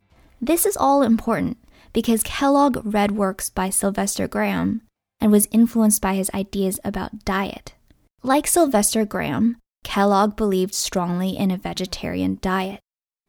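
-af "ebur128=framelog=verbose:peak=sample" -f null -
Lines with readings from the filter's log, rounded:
Integrated loudness:
  I:         -20.6 LUFS
  Threshold: -31.0 LUFS
Loudness range:
  LRA:         1.9 LU
  Threshold: -40.8 LUFS
  LRA low:   -21.9 LUFS
  LRA high:  -19.9 LUFS
Sample peak:
  Peak:       -3.8 dBFS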